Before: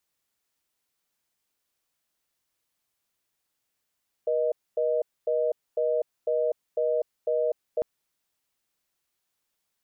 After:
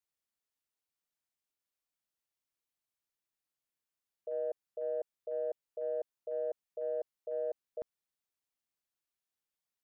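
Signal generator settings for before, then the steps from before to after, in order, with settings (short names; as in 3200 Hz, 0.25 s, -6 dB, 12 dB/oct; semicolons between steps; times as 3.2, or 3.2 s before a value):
call progress tone reorder tone, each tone -25 dBFS 3.55 s
gate -23 dBFS, range -13 dB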